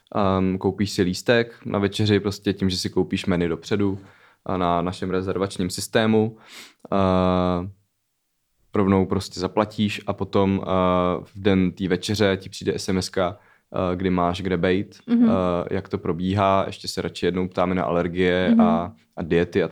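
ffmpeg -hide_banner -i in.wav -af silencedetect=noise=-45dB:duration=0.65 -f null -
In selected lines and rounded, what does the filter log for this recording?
silence_start: 7.73
silence_end: 8.74 | silence_duration: 1.01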